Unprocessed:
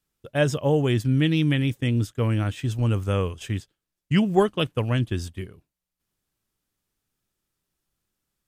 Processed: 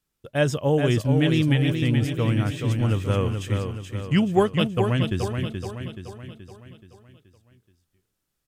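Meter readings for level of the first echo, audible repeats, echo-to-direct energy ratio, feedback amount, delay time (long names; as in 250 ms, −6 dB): −6.0 dB, 5, −5.0 dB, 50%, 427 ms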